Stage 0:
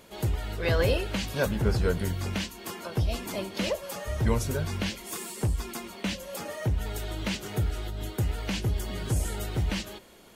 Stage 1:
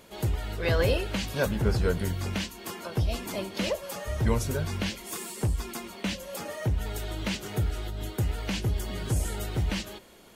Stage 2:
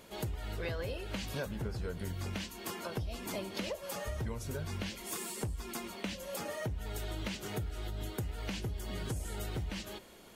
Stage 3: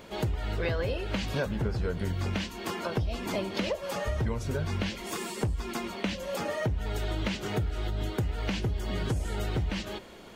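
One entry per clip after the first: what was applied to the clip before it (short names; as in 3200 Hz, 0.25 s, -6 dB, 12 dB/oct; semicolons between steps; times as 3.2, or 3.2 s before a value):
nothing audible
compressor 12:1, threshold -32 dBFS, peak gain reduction 14 dB; gain -2 dB
bell 12000 Hz -13 dB 1.3 oct; gain +8 dB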